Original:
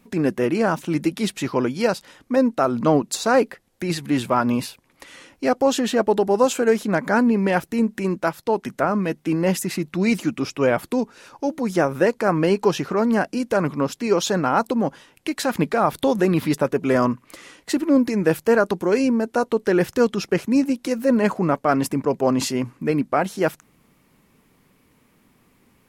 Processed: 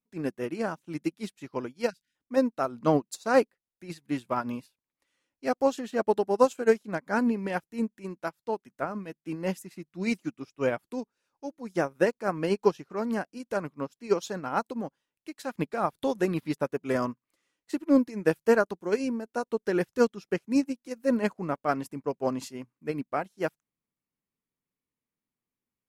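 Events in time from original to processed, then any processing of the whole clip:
1.9–2.15 spectral delete 280–1400 Hz
whole clip: high shelf 4200 Hz +3.5 dB; upward expander 2.5:1, over -34 dBFS; gain -2 dB

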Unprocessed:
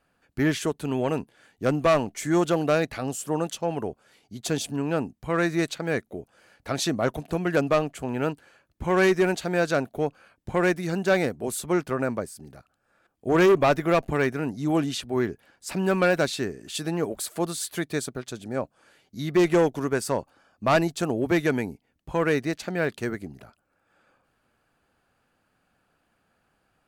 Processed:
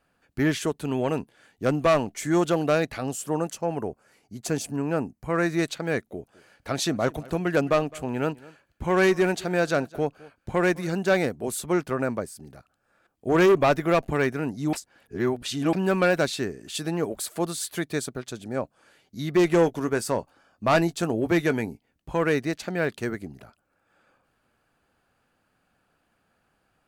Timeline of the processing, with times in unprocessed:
3.37–5.46 bell 3500 Hz -11 dB 0.51 oct
6.02–10.89 echo 0.211 s -22 dB
14.73–15.73 reverse
19.51–22.14 doubler 18 ms -14 dB

